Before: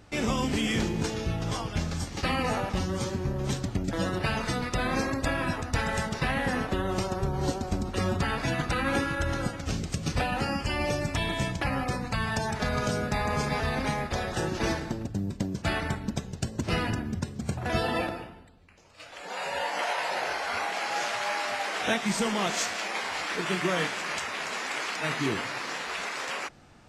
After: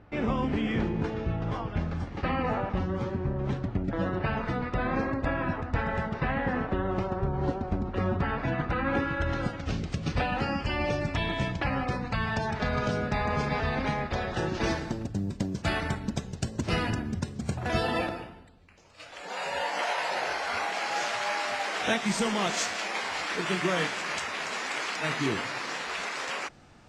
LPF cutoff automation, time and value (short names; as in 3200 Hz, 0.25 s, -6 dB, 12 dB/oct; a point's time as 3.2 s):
8.86 s 1900 Hz
9.39 s 3900 Hz
14.33 s 3900 Hz
14.97 s 9400 Hz